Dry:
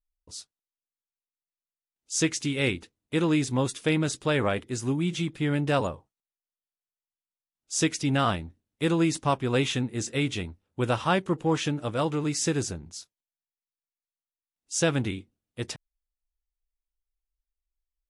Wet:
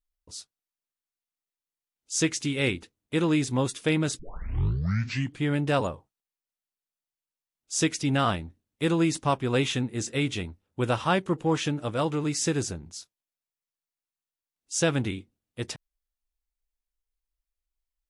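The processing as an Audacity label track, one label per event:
4.190000	4.190000	tape start 1.26 s

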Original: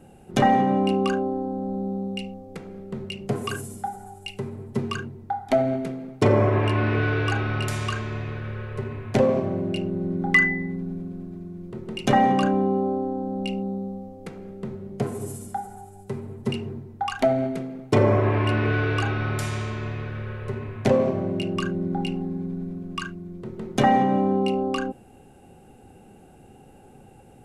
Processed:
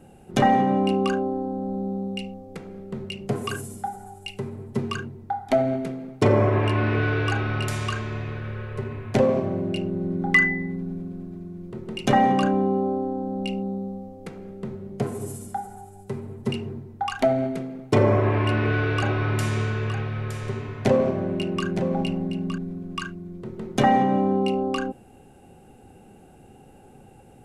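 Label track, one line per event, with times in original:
18.110000	22.580000	single-tap delay 915 ms −8.5 dB

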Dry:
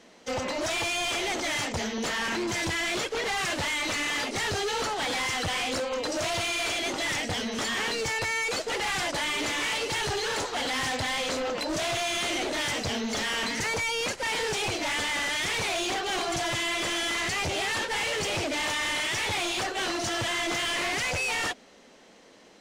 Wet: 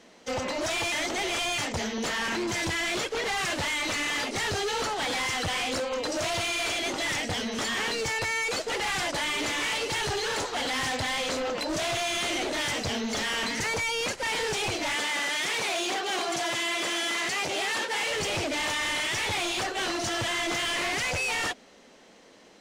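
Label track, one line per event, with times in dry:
0.920000	1.580000	reverse
14.950000	18.110000	high-pass filter 220 Hz

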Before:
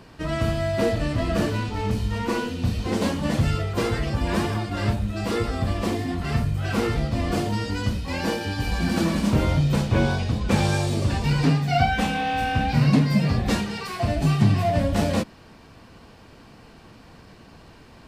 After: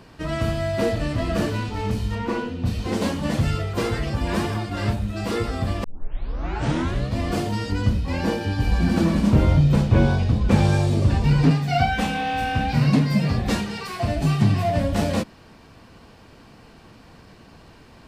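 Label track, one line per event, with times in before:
2.140000	2.650000	low-pass filter 3,600 Hz → 1,400 Hz 6 dB per octave
5.840000	5.840000	tape start 1.35 s
7.720000	11.510000	spectral tilt −1.5 dB per octave

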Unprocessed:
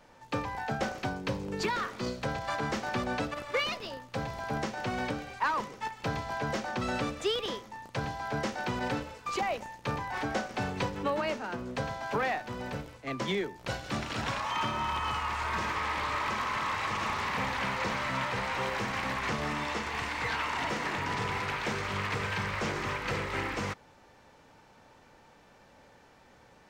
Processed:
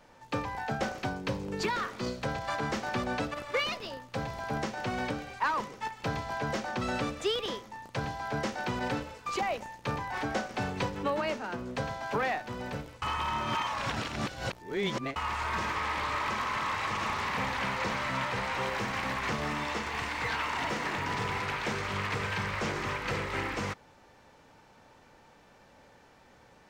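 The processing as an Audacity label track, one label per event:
13.020000	15.160000	reverse
18.740000	21.340000	log-companded quantiser 8 bits

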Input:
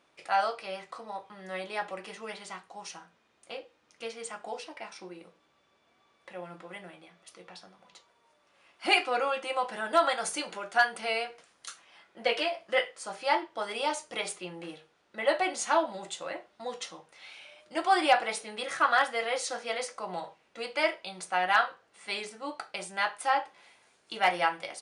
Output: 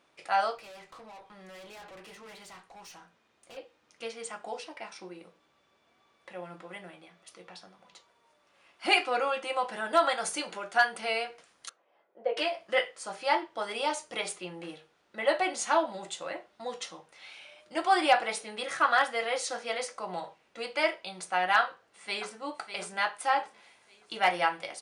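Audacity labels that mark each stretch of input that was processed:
0.570000	3.570000	tube saturation drive 46 dB, bias 0.25
11.690000	12.370000	resonant band-pass 520 Hz, Q 2.1
21.610000	22.390000	delay throw 600 ms, feedback 40%, level −10 dB

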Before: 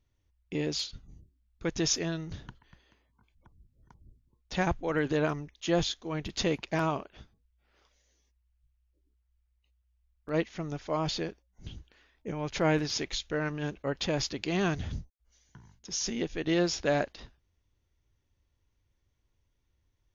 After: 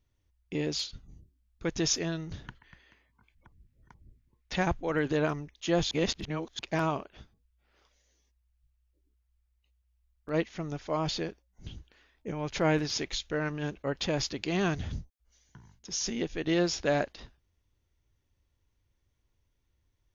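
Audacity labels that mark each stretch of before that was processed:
2.440000	4.560000	parametric band 2,000 Hz +9 dB 1 octave
5.910000	6.590000	reverse

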